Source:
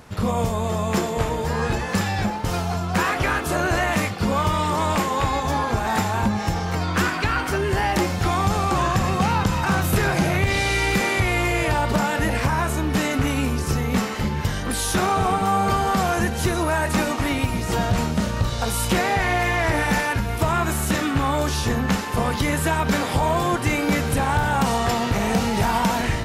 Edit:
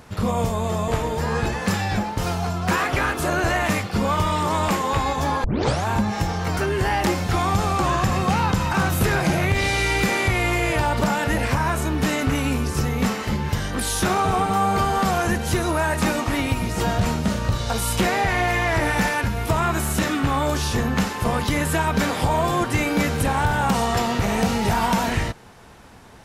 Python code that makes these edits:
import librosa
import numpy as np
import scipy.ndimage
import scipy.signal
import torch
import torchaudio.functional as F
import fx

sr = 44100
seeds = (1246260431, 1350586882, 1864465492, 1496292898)

y = fx.edit(x, sr, fx.cut(start_s=0.88, length_s=0.27),
    fx.tape_start(start_s=5.71, length_s=0.41),
    fx.cut(start_s=6.84, length_s=0.65), tone=tone)